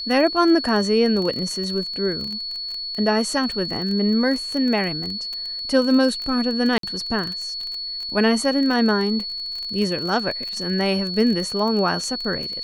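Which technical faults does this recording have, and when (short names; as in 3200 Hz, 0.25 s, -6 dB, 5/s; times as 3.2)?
crackle 23/s -25 dBFS
tone 4400 Hz -27 dBFS
6.78–6.83 gap 53 ms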